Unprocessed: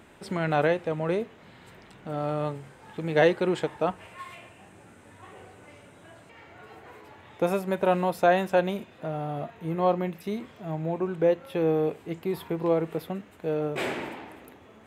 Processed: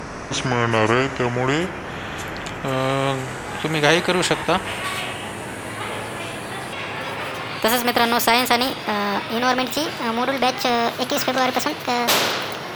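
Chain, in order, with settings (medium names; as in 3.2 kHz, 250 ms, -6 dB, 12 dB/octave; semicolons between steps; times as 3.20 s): gliding tape speed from 68% -> 165%; spectrum-flattening compressor 2:1; trim +8 dB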